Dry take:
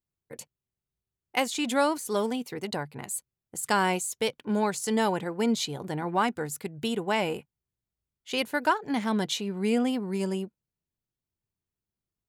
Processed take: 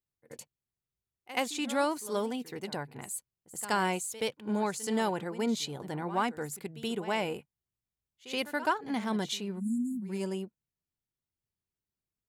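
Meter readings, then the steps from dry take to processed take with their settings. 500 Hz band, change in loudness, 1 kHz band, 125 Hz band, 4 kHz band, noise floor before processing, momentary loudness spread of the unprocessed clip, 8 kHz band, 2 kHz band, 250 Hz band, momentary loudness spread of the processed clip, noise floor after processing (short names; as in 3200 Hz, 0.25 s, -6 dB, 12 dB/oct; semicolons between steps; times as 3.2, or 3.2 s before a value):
-4.5 dB, -4.5 dB, -4.5 dB, -4.5 dB, -4.5 dB, under -85 dBFS, 9 LU, -4.5 dB, -4.5 dB, -4.5 dB, 10 LU, under -85 dBFS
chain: spectral delete 9.6–10.1, 260–6600 Hz; pre-echo 76 ms -15 dB; gain -4.5 dB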